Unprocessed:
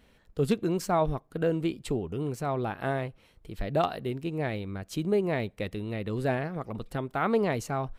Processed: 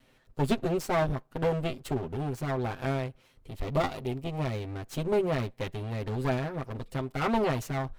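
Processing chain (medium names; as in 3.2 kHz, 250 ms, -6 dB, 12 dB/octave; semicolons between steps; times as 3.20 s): comb filter that takes the minimum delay 7.7 ms; 3.51–4.54 s: peaking EQ 1.6 kHz -8.5 dB 0.3 oct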